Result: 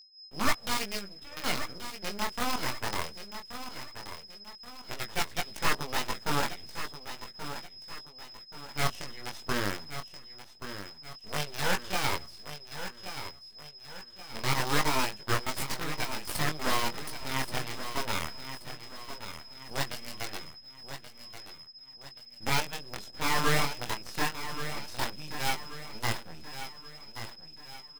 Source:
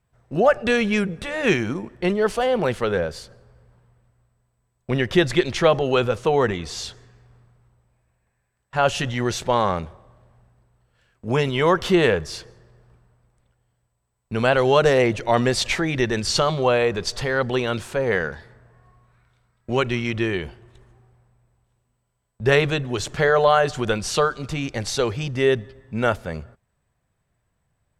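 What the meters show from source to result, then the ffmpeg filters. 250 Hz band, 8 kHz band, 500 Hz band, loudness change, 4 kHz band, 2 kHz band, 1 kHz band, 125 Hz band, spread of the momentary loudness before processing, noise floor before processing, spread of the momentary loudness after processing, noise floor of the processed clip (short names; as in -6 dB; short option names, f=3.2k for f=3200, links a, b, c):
-14.5 dB, -3.5 dB, -19.5 dB, -12.5 dB, -5.0 dB, -8.5 dB, -8.5 dB, -12.0 dB, 12 LU, -73 dBFS, 16 LU, -51 dBFS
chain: -filter_complex "[0:a]lowshelf=f=80:g=-8,agate=range=-33dB:threshold=-49dB:ratio=3:detection=peak,lowshelf=f=220:g=9.5,acrossover=split=490|3000[a][b][c];[a]acompressor=threshold=-24dB:ratio=8[d];[d][b][c]amix=inputs=3:normalize=0,acrossover=split=120[e][f];[f]acrusher=bits=4:dc=4:mix=0:aa=0.000001[g];[e][g]amix=inputs=2:normalize=0,aeval=exprs='abs(val(0))':c=same,aeval=exprs='val(0)+0.0282*sin(2*PI*5100*n/s)':c=same,flanger=delay=18.5:depth=6.4:speed=0.19,aeval=exprs='0.501*(cos(1*acos(clip(val(0)/0.501,-1,1)))-cos(1*PI/2))+0.0447*(cos(7*acos(clip(val(0)/0.501,-1,1)))-cos(7*PI/2))':c=same,aecho=1:1:1129|2258|3387|4516:0.299|0.125|0.0527|0.0221,volume=-6dB"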